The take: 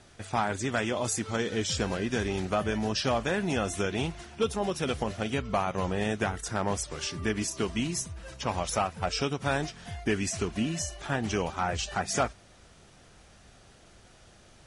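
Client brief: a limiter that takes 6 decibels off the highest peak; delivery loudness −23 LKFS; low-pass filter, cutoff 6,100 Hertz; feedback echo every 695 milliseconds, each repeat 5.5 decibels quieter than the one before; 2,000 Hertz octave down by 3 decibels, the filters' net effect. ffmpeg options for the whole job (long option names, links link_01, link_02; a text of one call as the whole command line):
ffmpeg -i in.wav -af "lowpass=6100,equalizer=frequency=2000:width_type=o:gain=-4,alimiter=limit=-22.5dB:level=0:latency=1,aecho=1:1:695|1390|2085|2780|3475|4170|4865:0.531|0.281|0.149|0.079|0.0419|0.0222|0.0118,volume=9.5dB" out.wav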